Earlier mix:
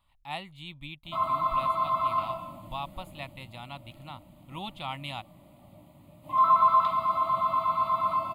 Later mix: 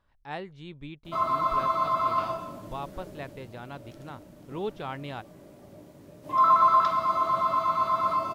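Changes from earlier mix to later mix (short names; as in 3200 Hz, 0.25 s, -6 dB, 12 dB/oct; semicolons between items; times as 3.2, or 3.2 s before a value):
speech: add LPF 1200 Hz 6 dB/oct; master: remove fixed phaser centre 1600 Hz, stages 6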